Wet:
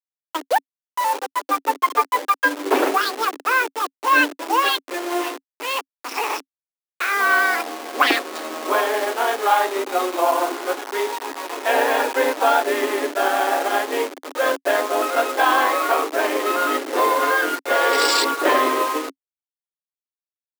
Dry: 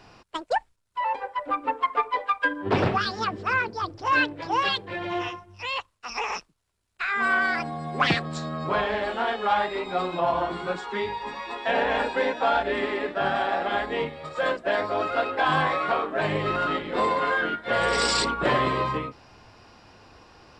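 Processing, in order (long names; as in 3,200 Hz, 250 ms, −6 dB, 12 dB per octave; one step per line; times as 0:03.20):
hold until the input has moved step −29 dBFS
Chebyshev high-pass filter 270 Hz, order 6
level +6.5 dB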